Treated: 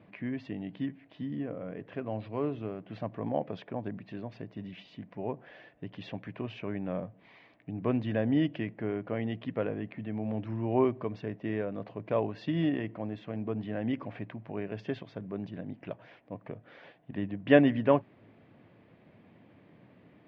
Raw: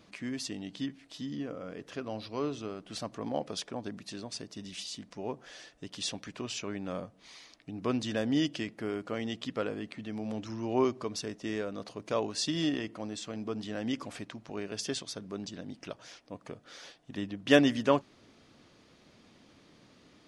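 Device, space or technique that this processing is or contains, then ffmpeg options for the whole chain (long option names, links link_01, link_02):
bass cabinet: -af "highpass=76,equalizer=frequency=110:width_type=q:width=4:gain=8,equalizer=frequency=170:width_type=q:width=4:gain=5,equalizer=frequency=640:width_type=q:width=4:gain=3,equalizer=frequency=1300:width_type=q:width=4:gain=-7,lowpass=frequency=2400:width=0.5412,lowpass=frequency=2400:width=1.3066,volume=1dB"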